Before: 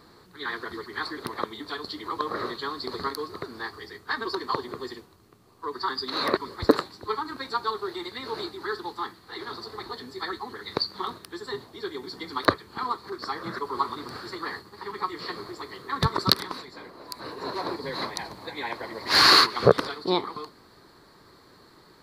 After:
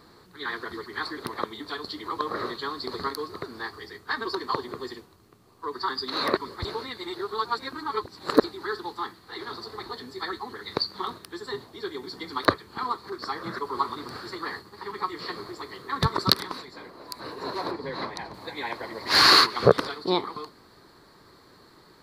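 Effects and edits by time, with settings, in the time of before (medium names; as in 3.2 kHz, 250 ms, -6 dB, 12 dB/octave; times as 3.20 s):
6.65–8.44 s: reverse
17.71–18.34 s: low-pass 2.6 kHz 6 dB/octave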